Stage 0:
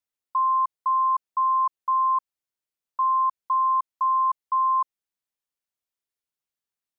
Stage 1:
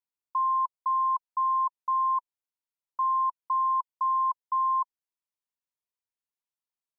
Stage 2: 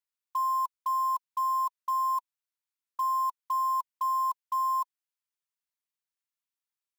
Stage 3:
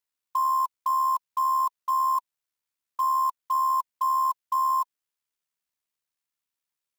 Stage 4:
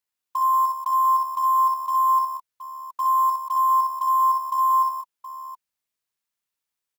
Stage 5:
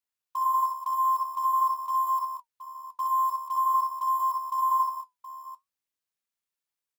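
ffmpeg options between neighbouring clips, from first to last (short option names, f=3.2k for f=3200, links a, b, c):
-af "equalizer=f=970:t=o:w=0.25:g=9.5,volume=-9dB"
-af "highpass=f=1k:w=0.5412,highpass=f=1k:w=1.3066,acrusher=bits=5:mode=log:mix=0:aa=0.000001"
-af "tremolo=f=73:d=0.462,volume=6dB"
-af "aecho=1:1:62|82|186|721:0.596|0.178|0.398|0.237"
-af "flanger=delay=4.2:depth=7.9:regen=-63:speed=0.47:shape=sinusoidal,volume=-1dB"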